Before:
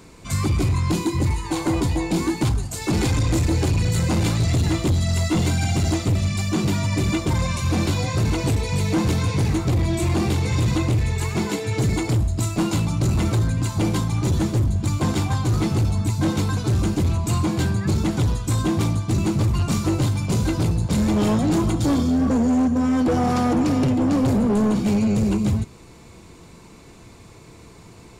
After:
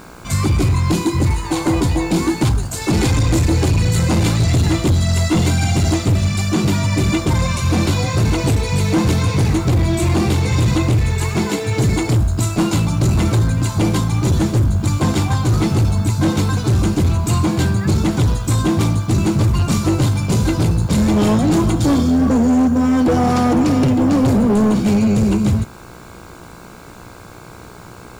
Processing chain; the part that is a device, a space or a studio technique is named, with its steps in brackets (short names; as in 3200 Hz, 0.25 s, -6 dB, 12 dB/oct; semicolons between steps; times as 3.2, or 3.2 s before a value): video cassette with head-switching buzz (buzz 60 Hz, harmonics 27, -47 dBFS 0 dB/oct; white noise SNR 38 dB); gain +5 dB